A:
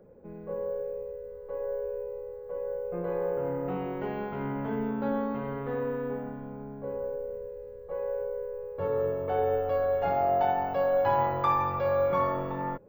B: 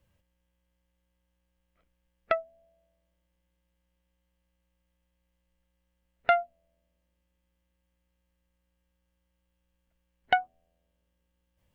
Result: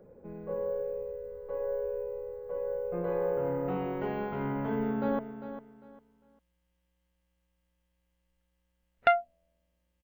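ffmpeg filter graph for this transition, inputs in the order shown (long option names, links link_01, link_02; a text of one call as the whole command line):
ffmpeg -i cue0.wav -i cue1.wav -filter_complex "[0:a]apad=whole_dur=10.03,atrim=end=10.03,atrim=end=5.192[link_01];[1:a]atrim=start=2.408:end=7.25[link_02];[link_01][link_02]acrossfade=duration=0.004:curve1=hsin:curve2=hsin,asplit=2[link_03][link_04];[link_04]afade=type=in:start_time=4.42:duration=0.01,afade=type=out:start_time=5.19:duration=0.01,aecho=0:1:400|800|1200:0.266073|0.0665181|0.0166295[link_05];[link_03][link_05]amix=inputs=2:normalize=0" out.wav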